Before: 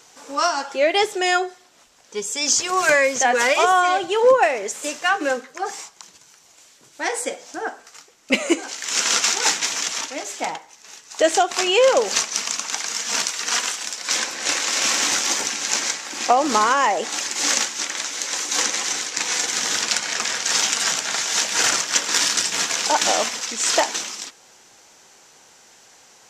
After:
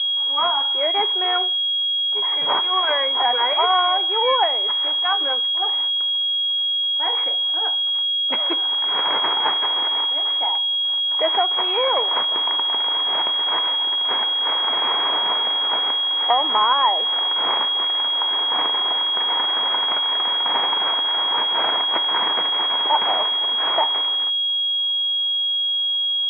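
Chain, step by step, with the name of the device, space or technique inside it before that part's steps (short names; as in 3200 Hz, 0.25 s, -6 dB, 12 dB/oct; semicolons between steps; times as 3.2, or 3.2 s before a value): toy sound module (decimation joined by straight lines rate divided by 8×; pulse-width modulation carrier 3300 Hz; speaker cabinet 520–3800 Hz, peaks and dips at 540 Hz -4 dB, 960 Hz +8 dB, 2200 Hz +6 dB, 3300 Hz +10 dB); gain -2 dB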